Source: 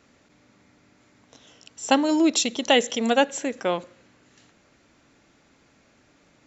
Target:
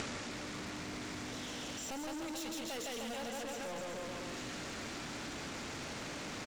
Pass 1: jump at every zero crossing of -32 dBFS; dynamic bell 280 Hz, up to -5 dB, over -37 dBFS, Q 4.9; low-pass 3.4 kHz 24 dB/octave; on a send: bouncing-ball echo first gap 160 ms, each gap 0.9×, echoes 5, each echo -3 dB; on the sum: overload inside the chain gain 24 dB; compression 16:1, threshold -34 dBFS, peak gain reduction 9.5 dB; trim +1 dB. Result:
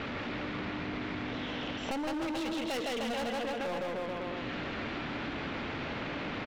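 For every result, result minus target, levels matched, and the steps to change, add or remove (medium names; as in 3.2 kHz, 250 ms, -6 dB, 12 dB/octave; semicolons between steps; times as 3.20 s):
8 kHz band -14.0 dB; compression: peak gain reduction -7.5 dB; jump at every zero crossing: distortion -6 dB
change: low-pass 7.8 kHz 24 dB/octave; change: compression 16:1, threshold -42 dBFS, peak gain reduction 17 dB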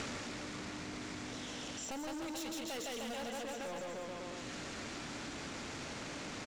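jump at every zero crossing: distortion -6 dB
change: jump at every zero crossing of -24.5 dBFS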